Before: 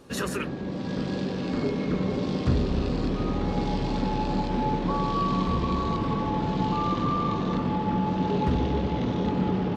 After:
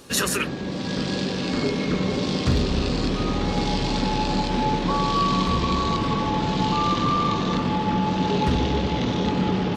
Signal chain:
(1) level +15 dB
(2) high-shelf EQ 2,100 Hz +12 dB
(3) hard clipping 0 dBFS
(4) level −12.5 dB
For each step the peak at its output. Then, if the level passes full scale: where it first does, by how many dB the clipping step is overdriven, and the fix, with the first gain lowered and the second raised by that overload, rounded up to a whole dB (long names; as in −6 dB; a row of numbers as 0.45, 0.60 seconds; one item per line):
+3.0, +3.5, 0.0, −12.5 dBFS
step 1, 3.5 dB
step 1 +11 dB, step 4 −8.5 dB